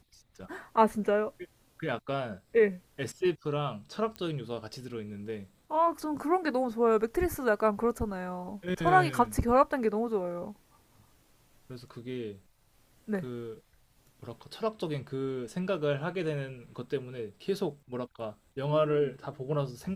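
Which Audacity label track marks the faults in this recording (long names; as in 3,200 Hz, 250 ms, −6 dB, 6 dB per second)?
4.160000	4.160000	click −24 dBFS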